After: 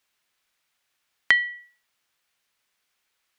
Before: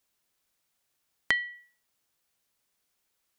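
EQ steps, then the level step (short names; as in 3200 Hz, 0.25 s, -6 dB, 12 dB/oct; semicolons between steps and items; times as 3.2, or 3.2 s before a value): bell 2100 Hz +10.5 dB 2.8 oct; -2.5 dB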